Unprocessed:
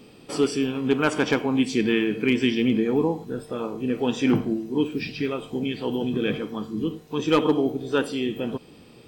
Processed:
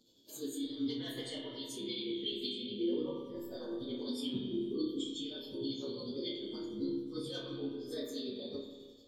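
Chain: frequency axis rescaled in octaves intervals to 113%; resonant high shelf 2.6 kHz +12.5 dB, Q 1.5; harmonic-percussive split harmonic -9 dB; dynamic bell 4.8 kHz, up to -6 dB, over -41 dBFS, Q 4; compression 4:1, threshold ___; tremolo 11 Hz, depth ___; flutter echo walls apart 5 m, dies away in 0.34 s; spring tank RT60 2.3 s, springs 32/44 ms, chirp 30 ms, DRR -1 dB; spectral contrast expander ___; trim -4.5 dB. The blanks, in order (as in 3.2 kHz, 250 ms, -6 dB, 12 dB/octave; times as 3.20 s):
-34 dBFS, 54%, 1.5:1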